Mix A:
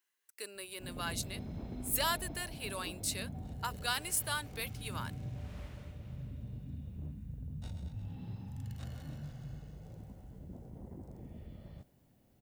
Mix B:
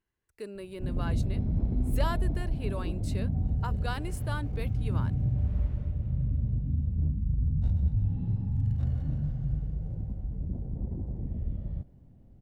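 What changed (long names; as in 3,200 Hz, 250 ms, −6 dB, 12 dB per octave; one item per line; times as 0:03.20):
speech: remove high-pass filter 400 Hz 6 dB per octave
master: add spectral tilt −4.5 dB per octave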